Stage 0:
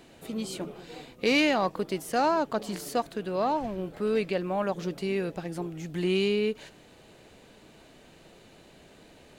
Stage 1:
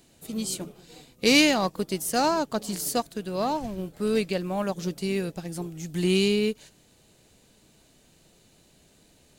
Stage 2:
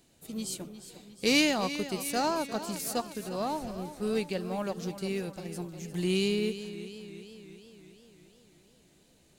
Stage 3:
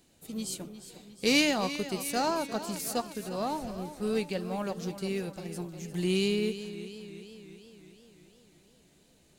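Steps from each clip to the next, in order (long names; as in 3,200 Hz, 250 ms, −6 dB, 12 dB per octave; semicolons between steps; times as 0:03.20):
bass and treble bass +7 dB, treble +14 dB; expander for the loud parts 1.5 to 1, over −43 dBFS; level +2.5 dB
feedback echo with a swinging delay time 354 ms, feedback 60%, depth 56 cents, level −12.5 dB; level −5.5 dB
flanger 0.25 Hz, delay 3.7 ms, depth 1.5 ms, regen −85%; level +4.5 dB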